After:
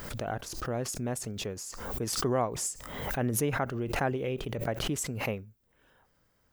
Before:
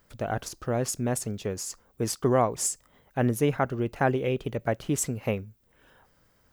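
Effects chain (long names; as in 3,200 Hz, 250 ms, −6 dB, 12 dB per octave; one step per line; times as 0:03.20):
background raised ahead of every attack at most 45 dB per second
level −6 dB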